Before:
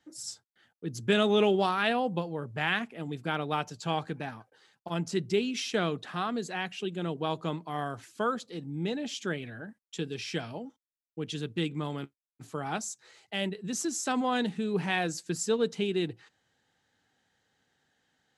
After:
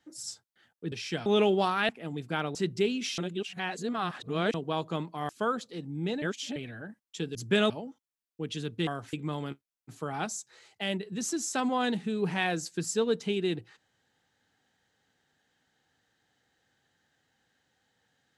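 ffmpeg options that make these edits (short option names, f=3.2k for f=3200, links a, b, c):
-filter_complex "[0:a]asplit=14[a][b][c][d][e][f][g][h][i][j][k][l][m][n];[a]atrim=end=0.922[o];[b]atrim=start=10.138:end=10.482[p];[c]atrim=start=1.268:end=1.902[q];[d]atrim=start=2.838:end=3.502[r];[e]atrim=start=5.078:end=5.712[s];[f]atrim=start=5.708:end=7.072,asetpts=PTS-STARTPTS,areverse[t];[g]atrim=start=7.068:end=7.822[u];[h]atrim=start=8.078:end=9.012[v];[i]atrim=start=9.008:end=9.352,asetpts=PTS-STARTPTS,areverse[w];[j]atrim=start=9.348:end=10.142[x];[k]atrim=start=0.918:end=1.272[y];[l]atrim=start=10.478:end=11.652[z];[m]atrim=start=7.818:end=8.082[aa];[n]atrim=start=11.648[ab];[o][p]acrossfade=d=0.004:c1=hsin:c2=hsin[ac];[ac][q]acrossfade=d=0.004:c1=hsin:c2=hsin[ad];[ad][r]acrossfade=d=0.004:c1=hsin:c2=hsin[ae];[ae][s]acrossfade=d=0.004:c1=hsin:c2=hsin[af];[af][t]acrossfade=d=0.004:c1=hsin:c2=hsin[ag];[ag][u]acrossfade=d=0.004:c1=hsin:c2=hsin[ah];[ah][v]acrossfade=d=0.004:c1=hsin:c2=hsin[ai];[ai][w]acrossfade=d=0.004:c1=hsin:c2=hsin[aj];[aj][x]acrossfade=d=0.004:c1=hsin:c2=hsin[ak];[ak][y]acrossfade=d=0.004:c1=hsin:c2=hsin[al];[al][z]acrossfade=d=0.004:c1=hsin:c2=hsin[am];[am][aa]acrossfade=d=0.004:c1=hsin:c2=hsin[an];[an][ab]acrossfade=d=0.004:c1=hsin:c2=hsin"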